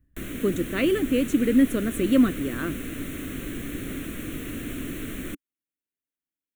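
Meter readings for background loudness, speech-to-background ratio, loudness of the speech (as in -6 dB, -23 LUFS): -34.0 LUFS, 10.5 dB, -23.5 LUFS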